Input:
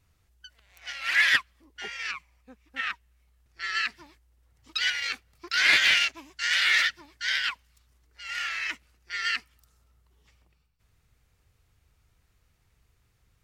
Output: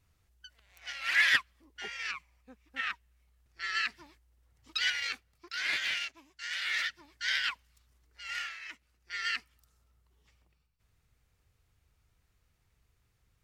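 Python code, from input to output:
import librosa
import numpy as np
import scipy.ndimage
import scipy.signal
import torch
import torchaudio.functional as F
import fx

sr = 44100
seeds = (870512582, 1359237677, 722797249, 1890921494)

y = fx.gain(x, sr, db=fx.line((5.03, -3.5), (5.6, -12.0), (6.61, -12.0), (7.23, -3.5), (8.37, -3.5), (8.59, -14.5), (9.12, -5.0)))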